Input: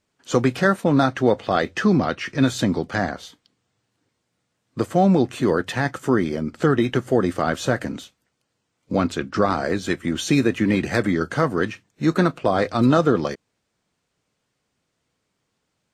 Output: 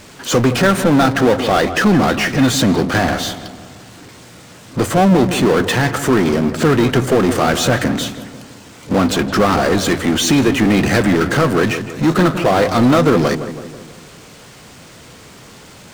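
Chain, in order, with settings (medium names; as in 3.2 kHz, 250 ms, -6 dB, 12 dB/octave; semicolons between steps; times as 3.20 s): power-law waveshaper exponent 0.5; on a send: filtered feedback delay 164 ms, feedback 55%, low-pass 1.8 kHz, level -10.5 dB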